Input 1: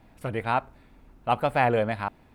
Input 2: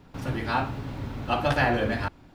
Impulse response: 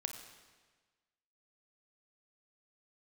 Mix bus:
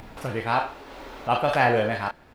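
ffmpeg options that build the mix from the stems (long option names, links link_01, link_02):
-filter_complex "[0:a]volume=0.5dB[link_01];[1:a]highpass=frequency=380:width=0.5412,highpass=frequency=380:width=1.3066,adelay=28,volume=-2.5dB,asplit=2[link_02][link_03];[link_03]volume=-15.5dB[link_04];[2:a]atrim=start_sample=2205[link_05];[link_04][link_05]afir=irnorm=-1:irlink=0[link_06];[link_01][link_02][link_06]amix=inputs=3:normalize=0,acompressor=mode=upward:threshold=-33dB:ratio=2.5"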